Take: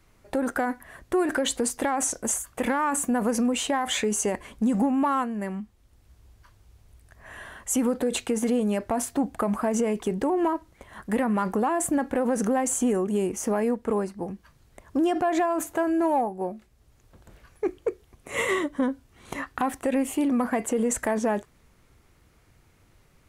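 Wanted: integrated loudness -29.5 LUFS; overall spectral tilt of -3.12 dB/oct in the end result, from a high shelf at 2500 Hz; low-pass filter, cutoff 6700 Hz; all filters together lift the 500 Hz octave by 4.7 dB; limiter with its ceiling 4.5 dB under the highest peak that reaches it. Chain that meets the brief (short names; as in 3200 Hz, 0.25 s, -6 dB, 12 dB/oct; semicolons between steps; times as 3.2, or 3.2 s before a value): LPF 6700 Hz; bell 500 Hz +6 dB; high shelf 2500 Hz -4.5 dB; gain -4 dB; limiter -20 dBFS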